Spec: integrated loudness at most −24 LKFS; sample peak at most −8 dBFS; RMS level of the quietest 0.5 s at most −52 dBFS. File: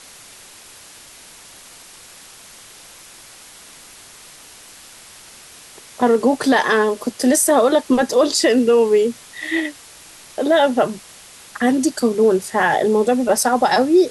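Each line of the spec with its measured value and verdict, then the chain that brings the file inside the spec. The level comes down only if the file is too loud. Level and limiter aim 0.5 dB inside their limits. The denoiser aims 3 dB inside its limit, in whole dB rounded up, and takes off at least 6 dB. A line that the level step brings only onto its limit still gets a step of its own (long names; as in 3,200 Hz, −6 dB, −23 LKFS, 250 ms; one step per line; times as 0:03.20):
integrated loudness −16.5 LKFS: out of spec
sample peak −5.5 dBFS: out of spec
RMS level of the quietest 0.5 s −42 dBFS: out of spec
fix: broadband denoise 6 dB, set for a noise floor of −42 dBFS
level −8 dB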